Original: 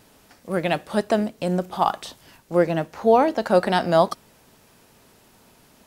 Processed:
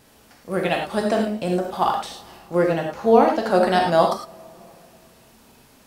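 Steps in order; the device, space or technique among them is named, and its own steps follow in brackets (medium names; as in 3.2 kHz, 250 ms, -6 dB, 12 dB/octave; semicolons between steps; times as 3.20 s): gated-style reverb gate 130 ms flat, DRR 0.5 dB; compressed reverb return (on a send at -11 dB: reverberation RT60 1.8 s, pre-delay 35 ms + compression, threshold -28 dBFS, peak gain reduction 18.5 dB); on the sum: trim -1 dB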